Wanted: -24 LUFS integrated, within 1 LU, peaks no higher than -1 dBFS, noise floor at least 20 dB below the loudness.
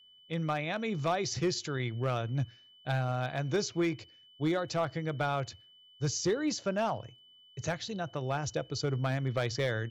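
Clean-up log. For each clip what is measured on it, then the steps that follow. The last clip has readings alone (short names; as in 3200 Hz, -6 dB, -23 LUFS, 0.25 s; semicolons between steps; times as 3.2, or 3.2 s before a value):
clipped 0.6%; flat tops at -22.5 dBFS; steady tone 3000 Hz; tone level -57 dBFS; loudness -33.0 LUFS; peak -22.5 dBFS; loudness target -24.0 LUFS
-> clip repair -22.5 dBFS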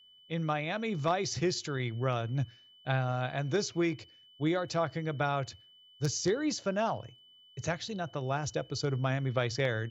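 clipped 0.0%; steady tone 3000 Hz; tone level -57 dBFS
-> notch 3000 Hz, Q 30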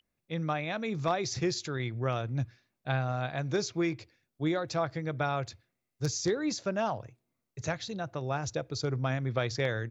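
steady tone none; loudness -33.0 LUFS; peak -14.0 dBFS; loudness target -24.0 LUFS
-> gain +9 dB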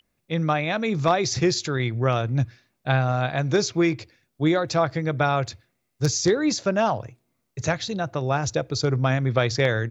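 loudness -24.0 LUFS; peak -5.0 dBFS; noise floor -75 dBFS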